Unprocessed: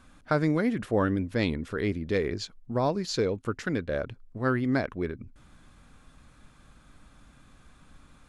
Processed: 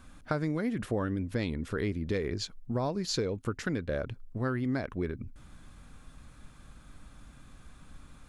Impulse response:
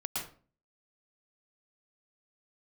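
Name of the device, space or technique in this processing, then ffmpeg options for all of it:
ASMR close-microphone chain: -af "lowshelf=frequency=160:gain=5,acompressor=threshold=-28dB:ratio=4,highshelf=frequency=8600:gain=5.5"

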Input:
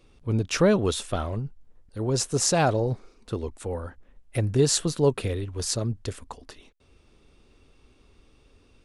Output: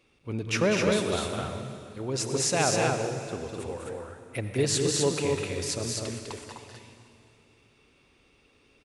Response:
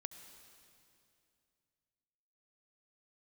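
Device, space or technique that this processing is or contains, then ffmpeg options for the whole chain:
stadium PA: -filter_complex "[0:a]highpass=frequency=170:poles=1,equalizer=frequency=2300:width_type=o:width=0.8:gain=7,aecho=1:1:201.2|253.6:0.562|0.708[link_01];[1:a]atrim=start_sample=2205[link_02];[link_01][link_02]afir=irnorm=-1:irlink=0"

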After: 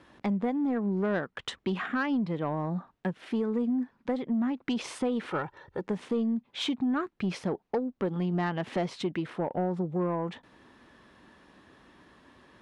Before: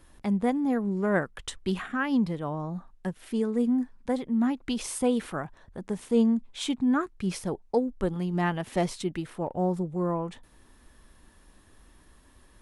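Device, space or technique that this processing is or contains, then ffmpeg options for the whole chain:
AM radio: -filter_complex "[0:a]asettb=1/sr,asplit=3[link_01][link_02][link_03];[link_01]atrim=end=5.304[link_04];[link_02]atrim=start=5.3:end=5.88,asetpts=PTS-STARTPTS,afade=type=in:duration=0.004:curve=qsin,afade=type=out:start_time=0.576:duration=0.004:curve=qsin,aecho=1:1:2.2:0.69,atrim=end_sample=25578[link_05];[link_03]atrim=start=5.876[link_06];[link_04][link_05]acrossfade=duration=0.004:curve1=hsin:curve2=qsin[link_07];[link_07][link_06]acrossfade=duration=0.004:curve1=qsin:curve2=hsin,highpass=150,lowpass=3600,acompressor=threshold=-30dB:ratio=5,asoftclip=type=tanh:threshold=-26dB,volume=5.5dB"

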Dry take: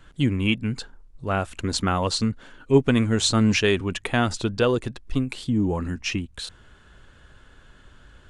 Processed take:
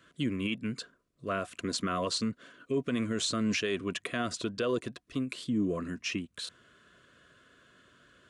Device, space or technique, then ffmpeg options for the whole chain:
PA system with an anti-feedback notch: -af "highpass=180,asuperstop=centerf=840:order=20:qfactor=3.6,alimiter=limit=-16.5dB:level=0:latency=1:release=49,volume=-5dB"

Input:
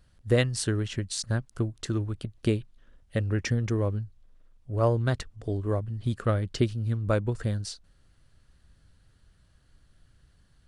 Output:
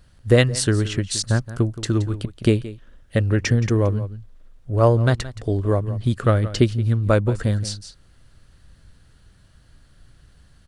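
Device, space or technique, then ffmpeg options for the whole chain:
ducked delay: -filter_complex "[0:a]asplit=3[link_01][link_02][link_03];[link_02]adelay=172,volume=-5dB[link_04];[link_03]apad=whole_len=478414[link_05];[link_04][link_05]sidechaincompress=threshold=-34dB:ratio=4:attack=5.5:release=824[link_06];[link_01][link_06]amix=inputs=2:normalize=0,volume=8dB"

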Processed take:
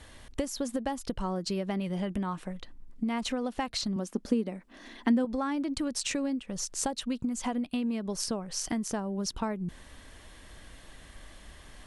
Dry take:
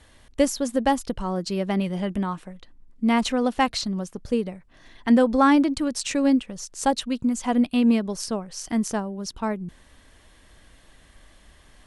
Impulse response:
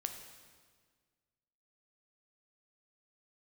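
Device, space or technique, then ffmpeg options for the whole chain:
serial compression, leveller first: -filter_complex "[0:a]acompressor=threshold=-22dB:ratio=2,acompressor=threshold=-32dB:ratio=6,asettb=1/sr,asplit=3[link_01][link_02][link_03];[link_01]atrim=end=3.964[link_04];[link_02]atrim=start=3.96:end=5.25,asetpts=PTS-STARTPTS,afade=type=in:duration=0.004:curve=qsin,afade=type=out:start_time=1.286:duration=0.004:curve=qsin,lowshelf=frequency=170:width_type=q:width=3:gain=-10.5[link_05];[link_03]atrim=start=5.246[link_06];[link_04][link_05]acrossfade=duration=0.004:curve1=hsin:curve2=qsin[link_07];[link_07][link_06]acrossfade=duration=0.004:curve1=qsin:curve2=hsin,volume=3dB"

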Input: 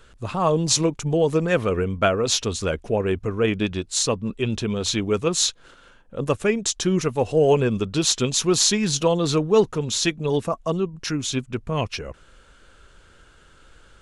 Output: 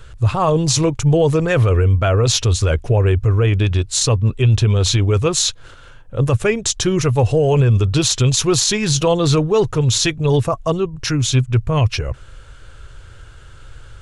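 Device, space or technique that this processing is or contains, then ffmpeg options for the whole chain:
car stereo with a boomy subwoofer: -af "lowshelf=frequency=150:width_type=q:width=3:gain=7.5,alimiter=limit=-13.5dB:level=0:latency=1:release=14,volume=6.5dB"

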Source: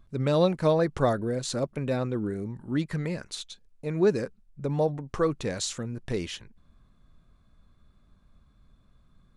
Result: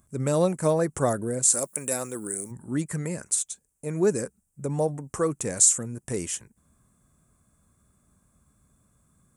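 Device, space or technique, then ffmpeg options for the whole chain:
budget condenser microphone: -filter_complex "[0:a]highpass=75,highshelf=frequency=5800:width_type=q:width=3:gain=14,asplit=3[link_01][link_02][link_03];[link_01]afade=type=out:start_time=1.52:duration=0.02[link_04];[link_02]aemphasis=mode=production:type=riaa,afade=type=in:start_time=1.52:duration=0.02,afade=type=out:start_time=2.5:duration=0.02[link_05];[link_03]afade=type=in:start_time=2.5:duration=0.02[link_06];[link_04][link_05][link_06]amix=inputs=3:normalize=0"

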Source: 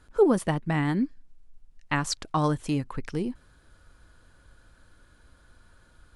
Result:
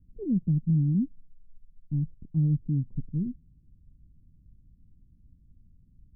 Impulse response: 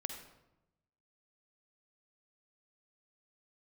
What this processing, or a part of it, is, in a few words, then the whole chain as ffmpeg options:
the neighbour's flat through the wall: -af "lowpass=frequency=230:width=0.5412,lowpass=frequency=230:width=1.3066,equalizer=frequency=160:width_type=o:width=0.91:gain=5.5"

